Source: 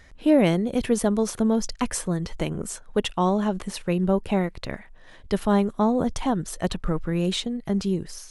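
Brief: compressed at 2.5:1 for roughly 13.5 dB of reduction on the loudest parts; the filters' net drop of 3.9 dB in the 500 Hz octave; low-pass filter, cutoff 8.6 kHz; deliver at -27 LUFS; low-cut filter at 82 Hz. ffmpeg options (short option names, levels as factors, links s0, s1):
-af "highpass=82,lowpass=8600,equalizer=f=500:t=o:g=-5,acompressor=threshold=0.0141:ratio=2.5,volume=3.16"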